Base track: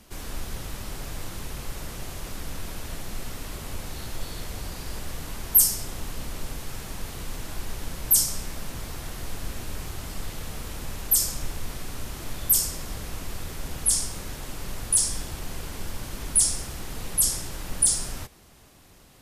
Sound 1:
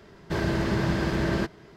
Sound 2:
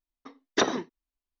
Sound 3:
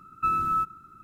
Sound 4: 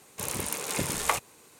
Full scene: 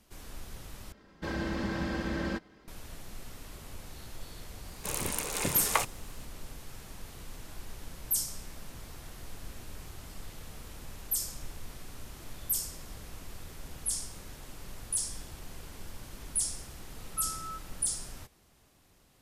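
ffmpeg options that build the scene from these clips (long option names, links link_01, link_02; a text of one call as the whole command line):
ffmpeg -i bed.wav -i cue0.wav -i cue1.wav -i cue2.wav -i cue3.wav -filter_complex "[0:a]volume=-10.5dB[link_01];[1:a]aecho=1:1:3.8:0.6[link_02];[3:a]lowpass=1900[link_03];[link_01]asplit=2[link_04][link_05];[link_04]atrim=end=0.924[link_06];[link_02]atrim=end=1.76,asetpts=PTS-STARTPTS,volume=-8dB[link_07];[link_05]atrim=start=2.676[link_08];[4:a]atrim=end=1.59,asetpts=PTS-STARTPTS,volume=-1.5dB,afade=type=in:duration=0.004:curve=hsin,afade=type=out:start_time=1.586:duration=0.004:curve=hsin,adelay=4660[link_09];[link_03]atrim=end=1.03,asetpts=PTS-STARTPTS,volume=-15.5dB,afade=type=in:duration=0.004:curve=hsin,afade=type=out:start_time=1.026:duration=0.004:curve=hsin,adelay=16940[link_10];[link_06][link_07]acrossfade=duration=0.004:curve1=hsin:curve2=hsin[link_11];[link_11][link_08]acrossfade=duration=0.004:curve1=hsin:curve2=hsin[link_12];[link_12][link_09][link_10]amix=inputs=3:normalize=0" out.wav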